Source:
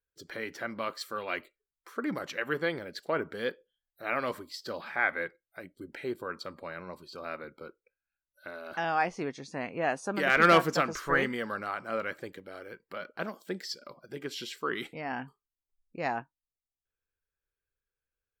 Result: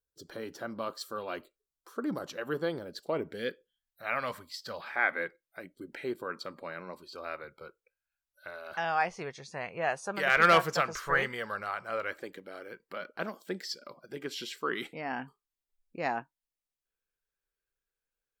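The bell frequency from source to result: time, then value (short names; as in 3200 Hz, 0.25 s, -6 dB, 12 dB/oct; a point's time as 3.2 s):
bell -14.5 dB 0.71 oct
2.99 s 2100 Hz
4.06 s 340 Hz
4.72 s 340 Hz
5.19 s 73 Hz
6.76 s 73 Hz
7.48 s 270 Hz
11.93 s 270 Hz
12.42 s 81 Hz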